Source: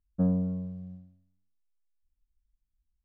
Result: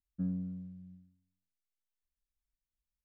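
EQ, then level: bass shelf 77 Hz -9.5 dB; high-order bell 700 Hz -15.5 dB; -7.5 dB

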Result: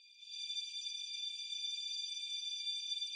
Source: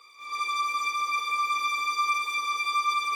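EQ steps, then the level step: brick-wall FIR high-pass 2.4 kHz; low-pass 10 kHz 24 dB/octave; distance through air 130 m; +1.5 dB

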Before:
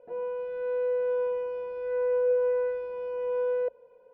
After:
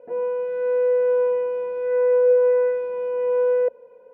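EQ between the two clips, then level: graphic EQ 125/250/500/1000/2000 Hz +4/+11/+7/+5/+10 dB; -2.5 dB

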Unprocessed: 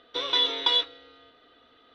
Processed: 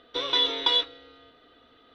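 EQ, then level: bass shelf 320 Hz +5.5 dB; 0.0 dB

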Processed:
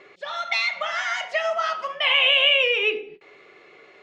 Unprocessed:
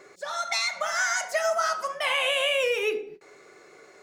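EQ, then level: resonant low-pass 3 kHz, resonance Q 3.3; band-stop 1.5 kHz, Q 13; 0.0 dB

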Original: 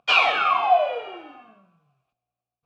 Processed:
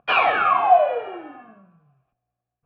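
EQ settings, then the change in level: low-pass 2.3 kHz 12 dB/octave; tilt EQ -2 dB/octave; peaking EQ 1.7 kHz +9.5 dB 0.22 oct; +2.5 dB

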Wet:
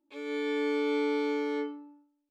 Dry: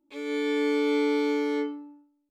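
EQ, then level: bass shelf 220 Hz -10 dB; treble shelf 4.6 kHz -8.5 dB; band-stop 2 kHz, Q 16; -1.5 dB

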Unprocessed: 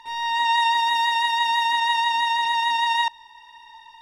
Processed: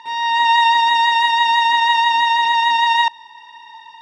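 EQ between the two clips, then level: high-pass 120 Hz 12 dB/octave; distance through air 64 m; +7.0 dB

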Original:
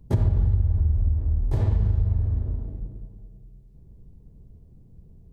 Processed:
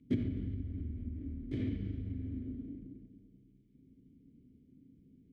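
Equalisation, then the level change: vowel filter i; +8.0 dB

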